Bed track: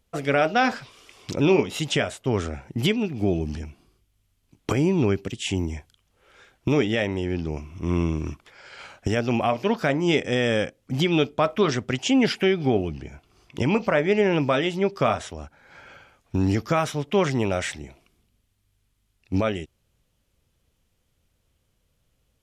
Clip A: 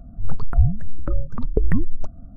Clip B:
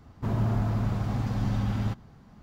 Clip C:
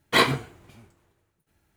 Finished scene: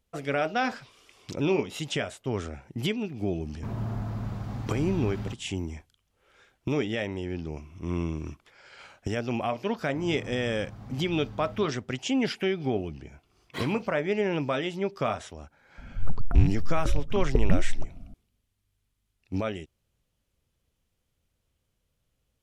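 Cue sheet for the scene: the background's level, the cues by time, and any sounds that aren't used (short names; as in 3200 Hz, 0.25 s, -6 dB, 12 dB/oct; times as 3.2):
bed track -6.5 dB
3.4 add B -6 dB
9.72 add B -15 dB
13.41 add C -18 dB
15.78 add A -4 dB + rattling part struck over -18 dBFS, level -26 dBFS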